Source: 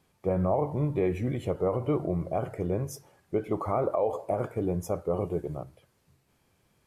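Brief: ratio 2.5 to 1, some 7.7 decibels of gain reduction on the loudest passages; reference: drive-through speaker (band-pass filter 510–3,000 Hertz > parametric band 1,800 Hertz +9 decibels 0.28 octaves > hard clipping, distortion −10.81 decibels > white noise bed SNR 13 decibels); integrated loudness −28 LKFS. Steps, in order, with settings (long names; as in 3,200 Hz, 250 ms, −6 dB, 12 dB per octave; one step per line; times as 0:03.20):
downward compressor 2.5 to 1, threshold −34 dBFS
band-pass filter 510–3,000 Hz
parametric band 1,800 Hz +9 dB 0.28 octaves
hard clipping −35 dBFS
white noise bed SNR 13 dB
level +15 dB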